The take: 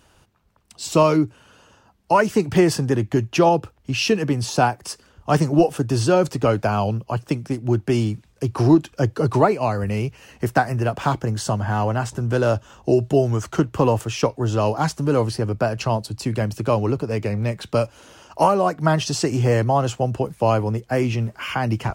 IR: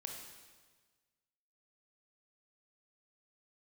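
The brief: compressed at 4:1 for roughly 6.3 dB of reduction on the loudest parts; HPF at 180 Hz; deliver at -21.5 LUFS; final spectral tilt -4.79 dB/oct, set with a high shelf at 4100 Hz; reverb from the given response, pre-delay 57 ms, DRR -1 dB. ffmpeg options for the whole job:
-filter_complex "[0:a]highpass=180,highshelf=f=4.1k:g=3.5,acompressor=threshold=-18dB:ratio=4,asplit=2[a][b];[1:a]atrim=start_sample=2205,adelay=57[c];[b][c]afir=irnorm=-1:irlink=0,volume=3.5dB[d];[a][d]amix=inputs=2:normalize=0"

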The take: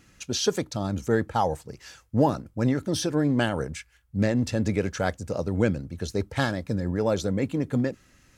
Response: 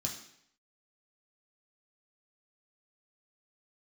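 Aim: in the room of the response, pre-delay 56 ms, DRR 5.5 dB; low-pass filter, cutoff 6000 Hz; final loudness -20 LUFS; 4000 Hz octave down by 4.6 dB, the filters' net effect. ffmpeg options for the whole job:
-filter_complex "[0:a]lowpass=6k,equalizer=f=4k:t=o:g=-5,asplit=2[a][b];[1:a]atrim=start_sample=2205,adelay=56[c];[b][c]afir=irnorm=-1:irlink=0,volume=-6dB[d];[a][d]amix=inputs=2:normalize=0,volume=4dB"

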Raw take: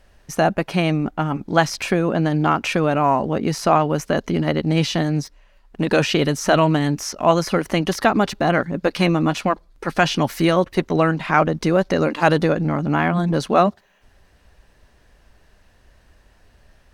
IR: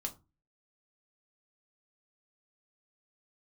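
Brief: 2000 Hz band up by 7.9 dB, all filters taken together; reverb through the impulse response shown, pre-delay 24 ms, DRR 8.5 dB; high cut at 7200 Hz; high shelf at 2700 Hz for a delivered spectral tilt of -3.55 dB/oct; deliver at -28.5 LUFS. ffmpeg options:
-filter_complex "[0:a]lowpass=7.2k,equalizer=f=2k:t=o:g=9,highshelf=f=2.7k:g=4,asplit=2[a][b];[1:a]atrim=start_sample=2205,adelay=24[c];[b][c]afir=irnorm=-1:irlink=0,volume=-8dB[d];[a][d]amix=inputs=2:normalize=0,volume=-12dB"

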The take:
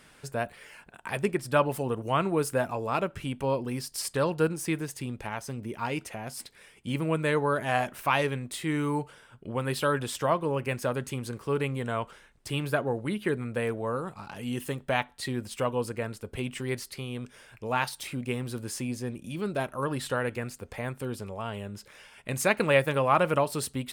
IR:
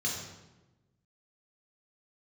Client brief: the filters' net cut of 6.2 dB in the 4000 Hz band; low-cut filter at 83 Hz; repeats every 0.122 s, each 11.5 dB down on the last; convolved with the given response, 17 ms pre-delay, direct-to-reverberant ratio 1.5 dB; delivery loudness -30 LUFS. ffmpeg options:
-filter_complex "[0:a]highpass=83,equalizer=f=4k:t=o:g=-9,aecho=1:1:122|244|366:0.266|0.0718|0.0194,asplit=2[a][b];[1:a]atrim=start_sample=2205,adelay=17[c];[b][c]afir=irnorm=-1:irlink=0,volume=-6.5dB[d];[a][d]amix=inputs=2:normalize=0,volume=-2.5dB"

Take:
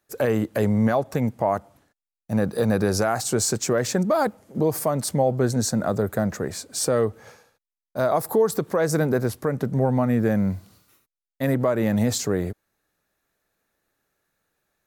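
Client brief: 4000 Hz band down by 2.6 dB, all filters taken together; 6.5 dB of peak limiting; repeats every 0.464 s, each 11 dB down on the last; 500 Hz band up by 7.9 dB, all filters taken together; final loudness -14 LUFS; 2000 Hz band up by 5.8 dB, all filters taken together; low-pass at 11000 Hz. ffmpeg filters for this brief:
-af "lowpass=11k,equalizer=f=500:t=o:g=9,equalizer=f=2k:t=o:g=8,equalizer=f=4k:t=o:g=-5,alimiter=limit=-10dB:level=0:latency=1,aecho=1:1:464|928|1392:0.282|0.0789|0.0221,volume=6.5dB"

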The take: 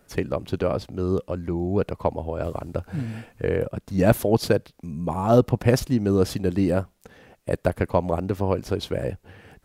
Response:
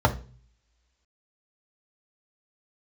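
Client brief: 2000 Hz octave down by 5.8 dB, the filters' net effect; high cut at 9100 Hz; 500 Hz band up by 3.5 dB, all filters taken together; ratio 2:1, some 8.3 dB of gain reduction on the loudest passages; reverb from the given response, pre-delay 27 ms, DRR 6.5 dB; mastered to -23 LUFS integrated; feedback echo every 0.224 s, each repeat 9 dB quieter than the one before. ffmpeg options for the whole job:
-filter_complex "[0:a]lowpass=9.1k,equalizer=f=500:t=o:g=4.5,equalizer=f=2k:t=o:g=-8.5,acompressor=threshold=-25dB:ratio=2,aecho=1:1:224|448|672|896:0.355|0.124|0.0435|0.0152,asplit=2[a][b];[1:a]atrim=start_sample=2205,adelay=27[c];[b][c]afir=irnorm=-1:irlink=0,volume=-23.5dB[d];[a][d]amix=inputs=2:normalize=0,volume=1dB"

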